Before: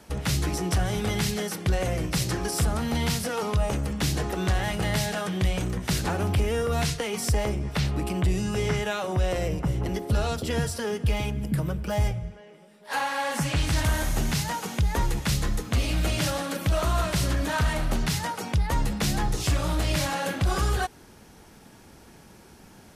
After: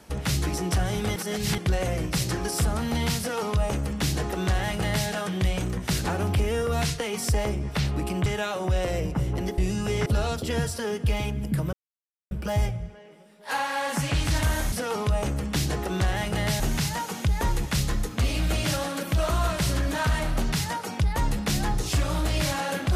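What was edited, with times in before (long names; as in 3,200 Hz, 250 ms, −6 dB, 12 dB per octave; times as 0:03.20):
0:01.16–0:01.58: reverse
0:03.19–0:05.07: duplicate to 0:14.14
0:08.26–0:08.74: move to 0:10.06
0:11.73: splice in silence 0.58 s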